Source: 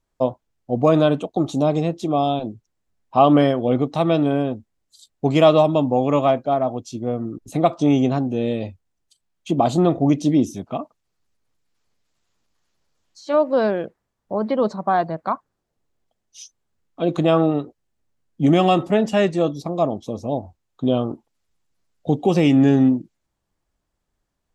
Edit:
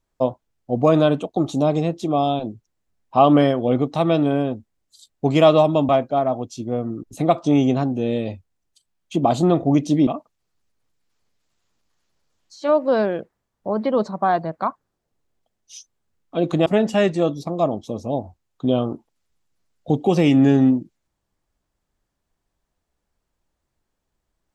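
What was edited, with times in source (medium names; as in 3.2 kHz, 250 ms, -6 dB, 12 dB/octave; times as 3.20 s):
5.89–6.24 s: delete
10.42–10.72 s: delete
17.31–18.85 s: delete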